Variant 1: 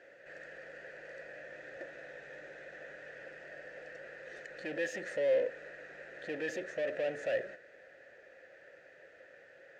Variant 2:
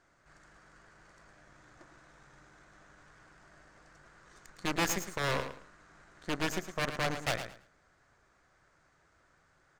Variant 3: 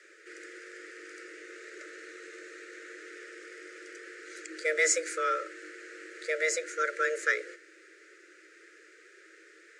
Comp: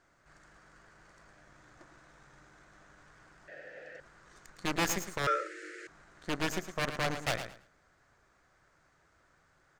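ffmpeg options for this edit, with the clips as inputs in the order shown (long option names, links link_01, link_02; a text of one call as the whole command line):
ffmpeg -i take0.wav -i take1.wav -i take2.wav -filter_complex "[1:a]asplit=3[link_01][link_02][link_03];[link_01]atrim=end=3.482[link_04];[0:a]atrim=start=3.478:end=4.002[link_05];[link_02]atrim=start=3.998:end=5.272[link_06];[2:a]atrim=start=5.268:end=5.872[link_07];[link_03]atrim=start=5.868[link_08];[link_04][link_05]acrossfade=duration=0.004:curve1=hsin:curve2=hsin[link_09];[link_09][link_06]acrossfade=duration=0.004:curve1=hsin:curve2=hsin[link_10];[link_10][link_07]acrossfade=duration=0.004:curve1=hsin:curve2=hsin[link_11];[link_11][link_08]acrossfade=duration=0.004:curve1=hsin:curve2=hsin" out.wav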